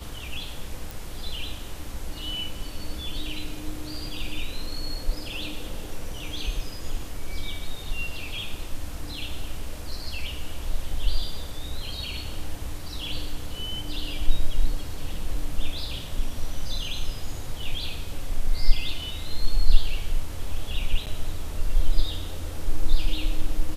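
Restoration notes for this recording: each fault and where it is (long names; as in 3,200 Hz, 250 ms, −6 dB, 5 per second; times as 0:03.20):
0:00.91: click
0:21.06–0:21.07: drop-out 8.6 ms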